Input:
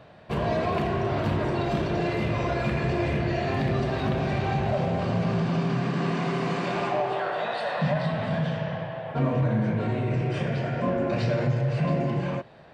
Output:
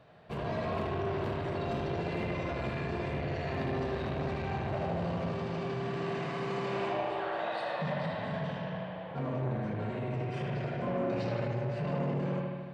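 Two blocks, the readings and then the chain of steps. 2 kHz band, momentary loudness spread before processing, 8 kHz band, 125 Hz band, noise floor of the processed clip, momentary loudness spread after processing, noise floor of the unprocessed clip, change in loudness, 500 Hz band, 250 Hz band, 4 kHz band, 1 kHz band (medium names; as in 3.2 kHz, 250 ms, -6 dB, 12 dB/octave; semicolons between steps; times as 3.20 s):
-7.5 dB, 3 LU, no reading, -9.0 dB, -40 dBFS, 3 LU, -36 dBFS, -7.5 dB, -6.5 dB, -8.5 dB, -7.5 dB, -7.0 dB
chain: bucket-brigade echo 76 ms, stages 2048, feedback 71%, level -3 dB; transformer saturation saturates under 430 Hz; trim -9 dB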